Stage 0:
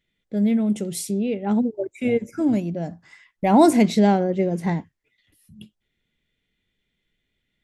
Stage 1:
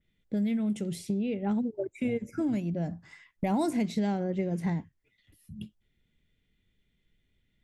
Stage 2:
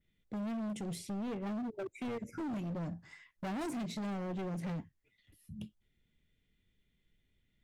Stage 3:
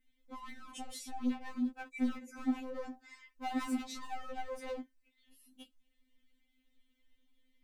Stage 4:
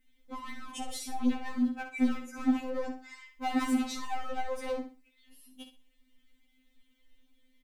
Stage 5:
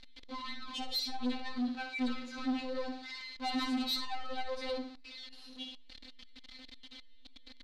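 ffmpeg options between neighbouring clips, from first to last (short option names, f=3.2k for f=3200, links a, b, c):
-filter_complex "[0:a]lowshelf=f=230:g=10.5,acrossover=split=1200|4900[a][b][c];[a]acompressor=threshold=-25dB:ratio=4[d];[b]acompressor=threshold=-40dB:ratio=4[e];[c]acompressor=threshold=-42dB:ratio=4[f];[d][e][f]amix=inputs=3:normalize=0,adynamicequalizer=threshold=0.00251:dfrequency=3100:dqfactor=0.7:tfrequency=3100:tqfactor=0.7:attack=5:release=100:ratio=0.375:range=2:mode=cutabove:tftype=highshelf,volume=-3.5dB"
-af "volume=33dB,asoftclip=hard,volume=-33dB,volume=-3dB"
-af "afftfilt=real='re*3.46*eq(mod(b,12),0)':imag='im*3.46*eq(mod(b,12),0)':win_size=2048:overlap=0.75,volume=4dB"
-af "aecho=1:1:62|124|186:0.355|0.0993|0.0278,volume=6dB"
-af "aeval=exprs='val(0)+0.5*0.00531*sgn(val(0))':c=same,lowpass=f=4.2k:t=q:w=6.6,asoftclip=type=tanh:threshold=-25dB,volume=-3dB"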